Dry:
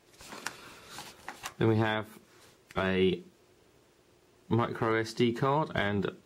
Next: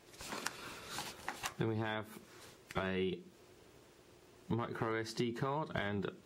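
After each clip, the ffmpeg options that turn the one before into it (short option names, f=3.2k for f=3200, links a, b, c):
-af "acompressor=threshold=-37dB:ratio=4,volume=1.5dB"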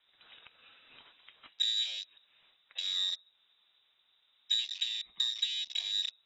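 -filter_complex "[0:a]acrossover=split=270|3000[a][b][c];[b]acompressor=threshold=-46dB:ratio=4[d];[a][d][c]amix=inputs=3:normalize=0,lowpass=f=3.4k:t=q:w=0.5098,lowpass=f=3.4k:t=q:w=0.6013,lowpass=f=3.4k:t=q:w=0.9,lowpass=f=3.4k:t=q:w=2.563,afreqshift=-4000,afwtdn=0.00631,volume=7.5dB"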